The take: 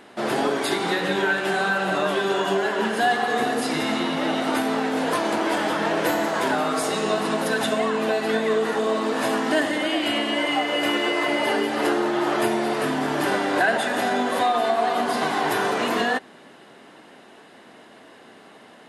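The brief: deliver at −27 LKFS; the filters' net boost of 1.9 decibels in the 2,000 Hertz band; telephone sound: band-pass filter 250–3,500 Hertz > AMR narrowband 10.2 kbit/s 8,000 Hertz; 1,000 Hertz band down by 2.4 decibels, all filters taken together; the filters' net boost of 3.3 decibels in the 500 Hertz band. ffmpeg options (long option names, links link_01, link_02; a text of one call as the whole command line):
ffmpeg -i in.wav -af "highpass=250,lowpass=3500,equalizer=frequency=500:width_type=o:gain=7,equalizer=frequency=1000:width_type=o:gain=-8.5,equalizer=frequency=2000:width_type=o:gain=5.5,volume=-4.5dB" -ar 8000 -c:a libopencore_amrnb -b:a 10200 out.amr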